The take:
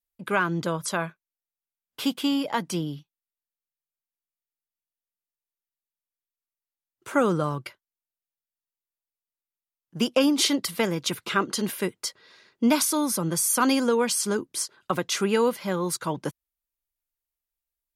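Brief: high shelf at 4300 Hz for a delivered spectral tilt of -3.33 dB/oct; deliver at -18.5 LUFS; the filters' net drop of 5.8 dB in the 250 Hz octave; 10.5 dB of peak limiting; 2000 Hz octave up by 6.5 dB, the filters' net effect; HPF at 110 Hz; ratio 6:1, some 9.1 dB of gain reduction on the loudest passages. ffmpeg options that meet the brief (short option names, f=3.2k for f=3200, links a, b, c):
-af "highpass=110,equalizer=f=250:t=o:g=-7,equalizer=f=2k:t=o:g=8.5,highshelf=f=4.3k:g=3,acompressor=threshold=-25dB:ratio=6,volume=13.5dB,alimiter=limit=-6.5dB:level=0:latency=1"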